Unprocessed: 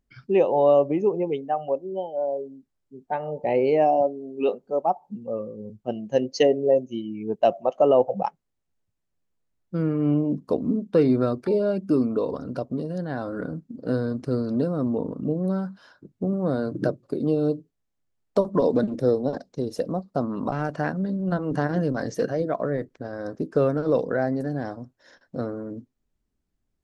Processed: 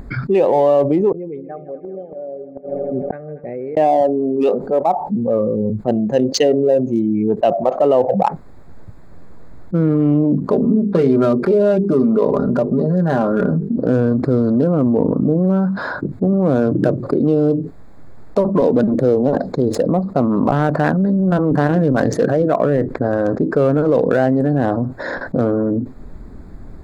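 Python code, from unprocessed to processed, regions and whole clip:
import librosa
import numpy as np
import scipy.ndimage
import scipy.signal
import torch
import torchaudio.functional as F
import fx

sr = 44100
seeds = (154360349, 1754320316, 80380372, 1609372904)

y = fx.chain(x, sr, fx.fixed_phaser(hz=2200.0, stages=4),
    fx.echo_heads(ms=80, heads='second and third', feedback_pct=65, wet_db=-17),
    fx.gate_flip(shuts_db=-33.0, range_db=-39), at=(1.12, 3.77))
y = fx.chain(y, sr, fx.hum_notches(base_hz=50, count=10),
    fx.comb(ms=5.0, depth=0.64), at=(10.46, 13.77))
y = fx.wiener(y, sr, points=15)
y = fx.peak_eq(y, sr, hz=5400.0, db=-3.5, octaves=0.27)
y = fx.env_flatten(y, sr, amount_pct=70)
y = y * 10.0 ** (3.0 / 20.0)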